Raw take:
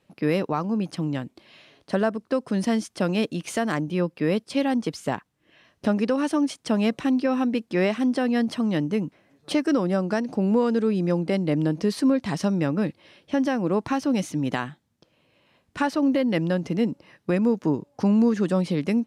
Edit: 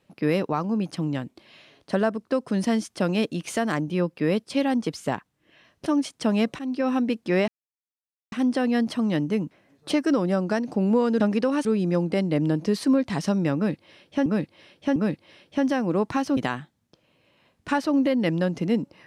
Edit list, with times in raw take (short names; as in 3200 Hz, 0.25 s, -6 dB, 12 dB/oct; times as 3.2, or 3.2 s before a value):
5.86–6.31 move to 10.81
7.04–7.34 fade in, from -14.5 dB
7.93 insert silence 0.84 s
12.72–13.42 loop, 3 plays
14.13–14.46 cut